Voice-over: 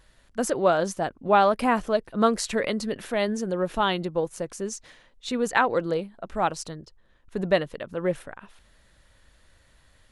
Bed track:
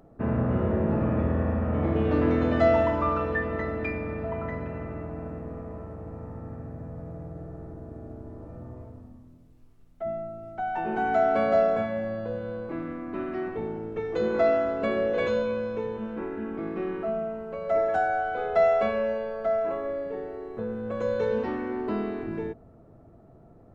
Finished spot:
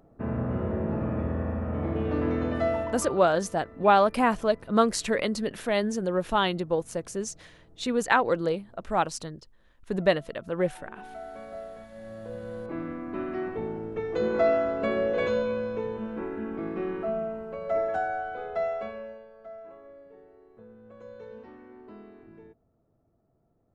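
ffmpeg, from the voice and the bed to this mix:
-filter_complex "[0:a]adelay=2550,volume=-0.5dB[a];[1:a]volume=14dB,afade=t=out:st=2.45:d=0.83:silence=0.188365,afade=t=in:st=11.9:d=0.91:silence=0.125893,afade=t=out:st=17.25:d=2.03:silence=0.133352[b];[a][b]amix=inputs=2:normalize=0"

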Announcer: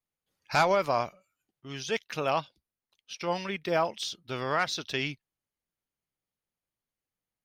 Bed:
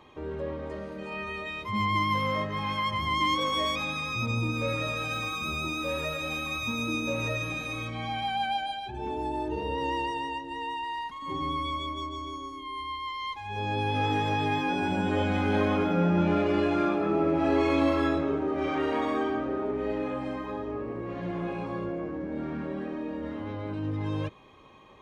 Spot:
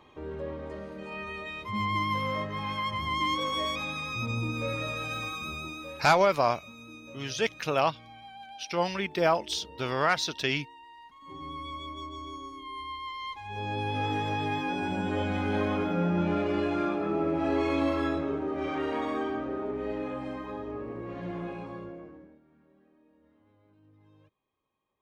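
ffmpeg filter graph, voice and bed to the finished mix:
-filter_complex "[0:a]adelay=5500,volume=2.5dB[a];[1:a]volume=11.5dB,afade=t=out:st=5.25:d=0.88:silence=0.188365,afade=t=in:st=10.97:d=1.38:silence=0.199526,afade=t=out:st=21.33:d=1.07:silence=0.0473151[b];[a][b]amix=inputs=2:normalize=0"

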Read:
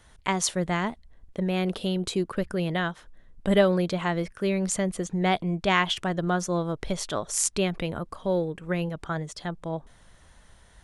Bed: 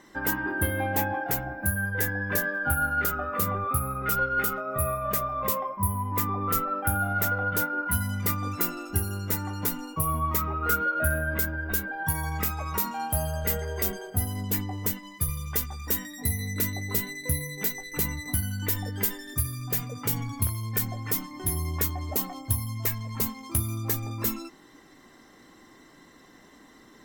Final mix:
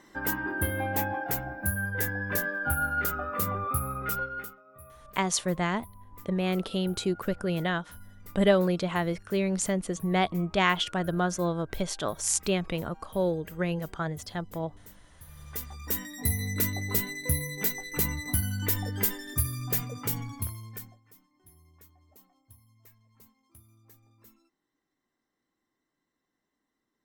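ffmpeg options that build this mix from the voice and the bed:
-filter_complex "[0:a]adelay=4900,volume=-1.5dB[a];[1:a]volume=21dB,afade=t=out:st=3.97:d=0.59:silence=0.0891251,afade=t=in:st=15.26:d=0.99:silence=0.0668344,afade=t=out:st=19.71:d=1.29:silence=0.0334965[b];[a][b]amix=inputs=2:normalize=0"

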